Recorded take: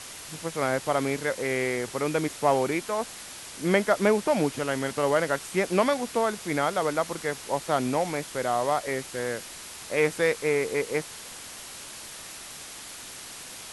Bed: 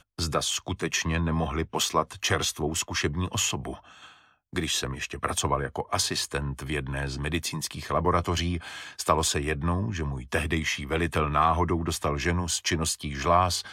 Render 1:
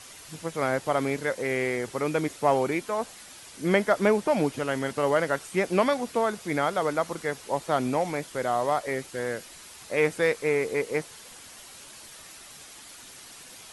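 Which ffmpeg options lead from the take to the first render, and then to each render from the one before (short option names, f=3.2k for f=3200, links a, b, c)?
-af "afftdn=nr=7:nf=-42"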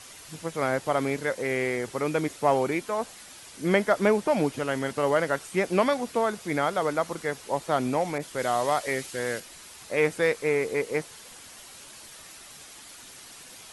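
-filter_complex "[0:a]asettb=1/sr,asplit=3[a][b][c];[a]atrim=end=8.184[d];[b]atrim=start=8.18:end=9.4,asetpts=PTS-STARTPTS,afade=t=in:d=0.004:c=qsin,afade=t=out:st=1.216:d=0.004:c=qsin,adynamicequalizer=threshold=0.0112:dfrequency=1800:dqfactor=0.7:tfrequency=1800:tqfactor=0.7:attack=5:release=100:ratio=0.375:range=3:mode=boostabove:tftype=highshelf[e];[c]atrim=start=9.396[f];[d][e]acrossfade=d=0.004:c1=hsin:c2=qsin[g];[g][f]acrossfade=d=0.004:c1=qsin:c2=hsin"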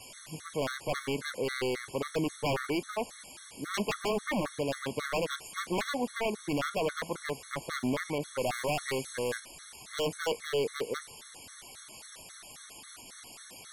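-af "aeval=exprs='0.0708*(abs(mod(val(0)/0.0708+3,4)-2)-1)':c=same,afftfilt=real='re*gt(sin(2*PI*3.7*pts/sr)*(1-2*mod(floor(b*sr/1024/1100),2)),0)':imag='im*gt(sin(2*PI*3.7*pts/sr)*(1-2*mod(floor(b*sr/1024/1100),2)),0)':win_size=1024:overlap=0.75"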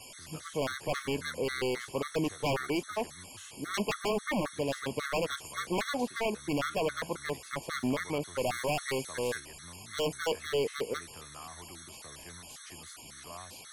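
-filter_complex "[1:a]volume=-26dB[a];[0:a][a]amix=inputs=2:normalize=0"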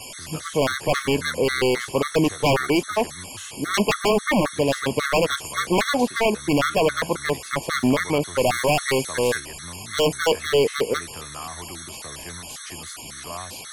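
-af "volume=11.5dB"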